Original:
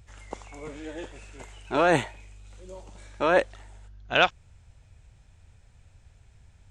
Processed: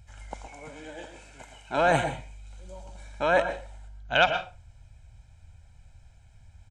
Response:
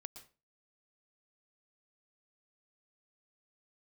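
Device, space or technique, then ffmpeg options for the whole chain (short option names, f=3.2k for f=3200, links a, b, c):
microphone above a desk: -filter_complex "[0:a]aecho=1:1:1.3:0.61[a];[1:a]atrim=start_sample=2205[b];[a][b]afir=irnorm=-1:irlink=0,asettb=1/sr,asplit=3[c][d][e];[c]atrim=end=0.474[f];[d]atrim=start=0.47:end=1.78,asetpts=PTS-STARTPTS,afade=t=in:d=0.004:c=qsin,afade=t=out:st=1.306:d=0.004:c=qsin,highpass=f=150:p=1[g];[e]atrim=start=1.776[h];[f][g]acrossfade=d=0.004:c1=hsin:c2=qsin[i];[i][h]acrossfade=d=0.004:c1=qsin:c2=hsin,volume=3.5dB"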